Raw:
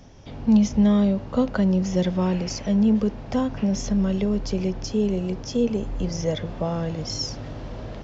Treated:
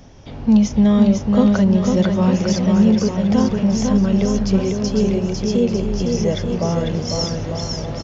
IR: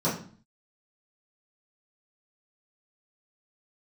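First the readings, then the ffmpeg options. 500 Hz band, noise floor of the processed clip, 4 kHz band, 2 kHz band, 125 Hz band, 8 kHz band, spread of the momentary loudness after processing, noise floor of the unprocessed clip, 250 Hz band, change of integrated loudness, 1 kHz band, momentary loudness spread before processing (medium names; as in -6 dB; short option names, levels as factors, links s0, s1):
+6.0 dB, -31 dBFS, +6.0 dB, +6.0 dB, +6.5 dB, no reading, 7 LU, -37 dBFS, +6.5 dB, +6.0 dB, +6.0 dB, 10 LU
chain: -af "aecho=1:1:500|900|1220|1476|1681:0.631|0.398|0.251|0.158|0.1,aresample=16000,aresample=44100,volume=1.58"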